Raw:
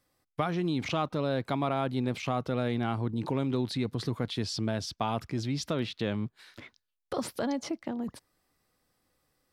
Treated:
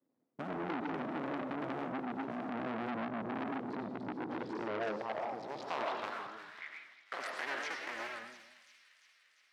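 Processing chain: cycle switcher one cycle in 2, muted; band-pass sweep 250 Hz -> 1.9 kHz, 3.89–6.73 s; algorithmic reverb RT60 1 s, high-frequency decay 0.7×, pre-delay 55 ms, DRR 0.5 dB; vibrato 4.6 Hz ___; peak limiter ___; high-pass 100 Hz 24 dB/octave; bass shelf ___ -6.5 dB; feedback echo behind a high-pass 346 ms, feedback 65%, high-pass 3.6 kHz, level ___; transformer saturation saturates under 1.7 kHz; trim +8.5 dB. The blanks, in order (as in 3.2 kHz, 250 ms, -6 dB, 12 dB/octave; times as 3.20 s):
92 cents, -31 dBFS, 240 Hz, -9.5 dB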